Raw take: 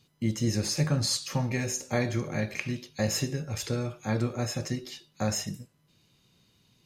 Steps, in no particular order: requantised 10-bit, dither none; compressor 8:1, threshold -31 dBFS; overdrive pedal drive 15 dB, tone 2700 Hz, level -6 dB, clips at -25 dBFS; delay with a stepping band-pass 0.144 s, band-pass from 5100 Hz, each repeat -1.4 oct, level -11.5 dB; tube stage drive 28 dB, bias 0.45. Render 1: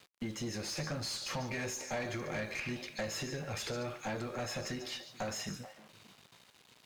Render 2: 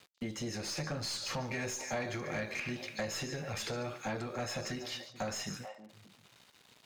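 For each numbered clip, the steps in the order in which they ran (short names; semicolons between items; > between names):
compressor > delay with a stepping band-pass > requantised > overdrive pedal > tube stage; requantised > delay with a stepping band-pass > compressor > tube stage > overdrive pedal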